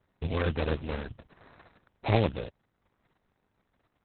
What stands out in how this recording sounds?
aliases and images of a low sample rate 3.1 kHz, jitter 20%; tremolo saw down 0.71 Hz, depth 30%; Opus

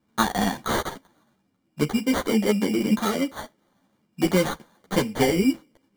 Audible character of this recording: aliases and images of a low sample rate 2.6 kHz, jitter 0%; a shimmering, thickened sound

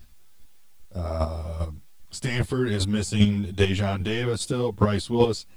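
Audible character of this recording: chopped level 2.5 Hz, depth 60%, duty 10%; a quantiser's noise floor 12-bit, dither triangular; a shimmering, thickened sound

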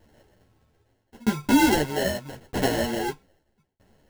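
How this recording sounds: aliases and images of a low sample rate 1.2 kHz, jitter 0%; tremolo saw down 0.79 Hz, depth 100%; a shimmering, thickened sound

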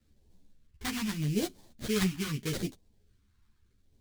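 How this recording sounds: aliases and images of a low sample rate 2.7 kHz, jitter 20%; phasing stages 2, 0.8 Hz, lowest notch 550–1300 Hz; tremolo saw down 0.51 Hz, depth 35%; a shimmering, thickened sound

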